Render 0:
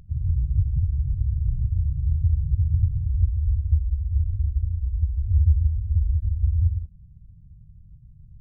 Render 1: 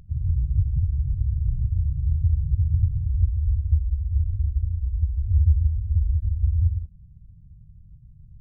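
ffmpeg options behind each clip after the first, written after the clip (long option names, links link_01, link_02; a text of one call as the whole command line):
ffmpeg -i in.wav -af anull out.wav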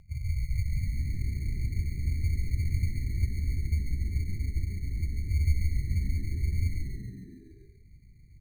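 ffmpeg -i in.wav -filter_complex "[0:a]acrusher=samples=20:mix=1:aa=0.000001,asplit=8[link_01][link_02][link_03][link_04][link_05][link_06][link_07][link_08];[link_02]adelay=139,afreqshift=-68,volume=-5dB[link_09];[link_03]adelay=278,afreqshift=-136,volume=-10dB[link_10];[link_04]adelay=417,afreqshift=-204,volume=-15.1dB[link_11];[link_05]adelay=556,afreqshift=-272,volume=-20.1dB[link_12];[link_06]adelay=695,afreqshift=-340,volume=-25.1dB[link_13];[link_07]adelay=834,afreqshift=-408,volume=-30.2dB[link_14];[link_08]adelay=973,afreqshift=-476,volume=-35.2dB[link_15];[link_01][link_09][link_10][link_11][link_12][link_13][link_14][link_15]amix=inputs=8:normalize=0,volume=-8dB" out.wav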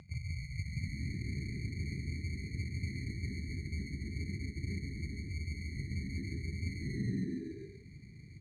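ffmpeg -i in.wav -af "areverse,acompressor=threshold=-36dB:ratio=6,areverse,highpass=150,lowpass=5900,volume=11.5dB" out.wav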